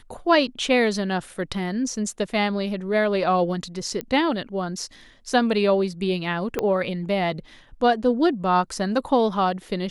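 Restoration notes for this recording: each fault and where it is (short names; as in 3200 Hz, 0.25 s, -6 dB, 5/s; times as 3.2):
4.01 pop -14 dBFS
6.59 pop -10 dBFS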